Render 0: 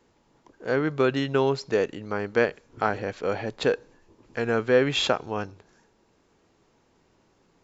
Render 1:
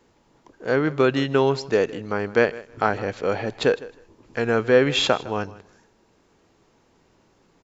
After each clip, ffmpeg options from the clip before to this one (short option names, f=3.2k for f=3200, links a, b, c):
-af "aecho=1:1:157|314:0.112|0.0202,volume=3.5dB"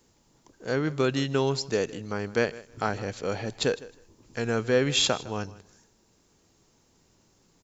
-af "bass=f=250:g=6,treble=f=4k:g=15,volume=-7.5dB"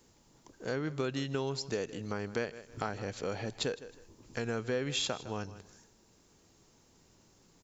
-af "acompressor=threshold=-35dB:ratio=2.5"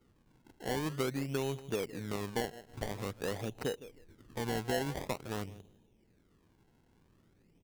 -af "adynamicsmooth=sensitivity=4:basefreq=580,acrusher=samples=25:mix=1:aa=0.000001:lfo=1:lforange=25:lforate=0.48"